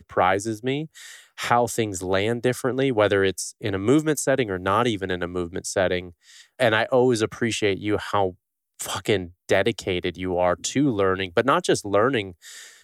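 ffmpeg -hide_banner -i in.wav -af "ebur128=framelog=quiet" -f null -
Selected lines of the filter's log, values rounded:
Integrated loudness:
  I:         -23.1 LUFS
  Threshold: -33.5 LUFS
Loudness range:
  LRA:         2.0 LU
  Threshold: -43.5 LUFS
  LRA low:   -24.6 LUFS
  LRA high:  -22.5 LUFS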